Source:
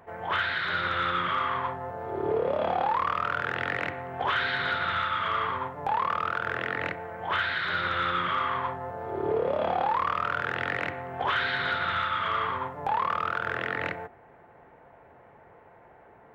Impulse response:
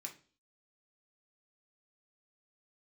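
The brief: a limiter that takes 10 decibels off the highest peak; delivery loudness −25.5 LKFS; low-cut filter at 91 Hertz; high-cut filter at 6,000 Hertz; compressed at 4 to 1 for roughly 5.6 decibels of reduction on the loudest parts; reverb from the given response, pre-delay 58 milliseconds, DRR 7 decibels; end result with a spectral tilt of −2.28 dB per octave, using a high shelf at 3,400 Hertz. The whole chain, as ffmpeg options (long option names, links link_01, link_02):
-filter_complex "[0:a]highpass=91,lowpass=6000,highshelf=frequency=3400:gain=-7.5,acompressor=threshold=-30dB:ratio=4,alimiter=level_in=5.5dB:limit=-24dB:level=0:latency=1,volume=-5.5dB,asplit=2[link_01][link_02];[1:a]atrim=start_sample=2205,adelay=58[link_03];[link_02][link_03]afir=irnorm=-1:irlink=0,volume=-3.5dB[link_04];[link_01][link_04]amix=inputs=2:normalize=0,volume=12dB"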